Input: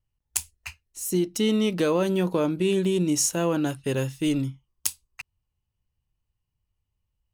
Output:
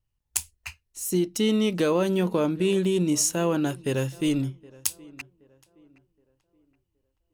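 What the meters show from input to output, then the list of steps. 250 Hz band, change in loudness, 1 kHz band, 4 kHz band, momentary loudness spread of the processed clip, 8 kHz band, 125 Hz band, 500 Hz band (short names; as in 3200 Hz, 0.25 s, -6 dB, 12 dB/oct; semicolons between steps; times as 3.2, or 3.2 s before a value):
0.0 dB, 0.0 dB, 0.0 dB, 0.0 dB, 18 LU, 0.0 dB, 0.0 dB, 0.0 dB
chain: on a send: tape echo 0.771 s, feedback 37%, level -22 dB, low-pass 2000 Hz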